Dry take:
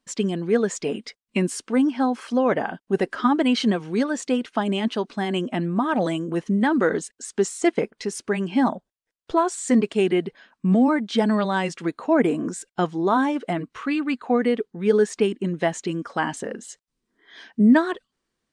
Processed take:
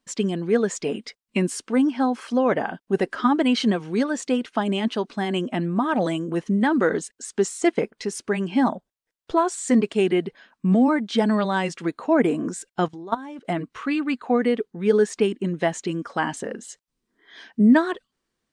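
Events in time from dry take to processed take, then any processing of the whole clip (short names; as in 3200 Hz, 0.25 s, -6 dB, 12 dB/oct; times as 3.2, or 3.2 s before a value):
12.88–13.45 level quantiser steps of 18 dB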